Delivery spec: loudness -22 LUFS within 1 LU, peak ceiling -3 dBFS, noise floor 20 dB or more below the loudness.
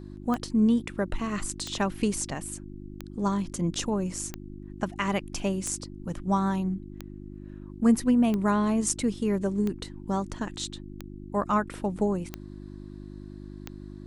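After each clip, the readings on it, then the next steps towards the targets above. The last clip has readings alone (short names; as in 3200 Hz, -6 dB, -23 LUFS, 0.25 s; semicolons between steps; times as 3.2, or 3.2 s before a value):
clicks 11; hum 50 Hz; harmonics up to 350 Hz; hum level -40 dBFS; loudness -28.5 LUFS; peak -10.5 dBFS; loudness target -22.0 LUFS
-> de-click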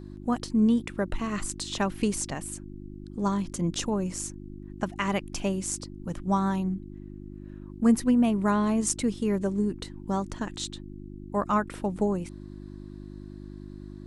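clicks 0; hum 50 Hz; harmonics up to 350 Hz; hum level -40 dBFS
-> de-hum 50 Hz, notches 7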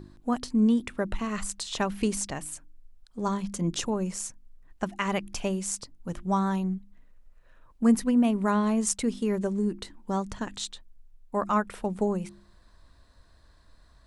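hum none; loudness -28.5 LUFS; peak -10.5 dBFS; loudness target -22.0 LUFS
-> gain +6.5 dB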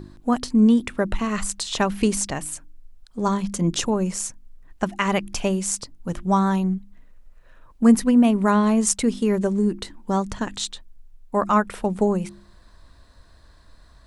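loudness -22.0 LUFS; peak -4.0 dBFS; noise floor -51 dBFS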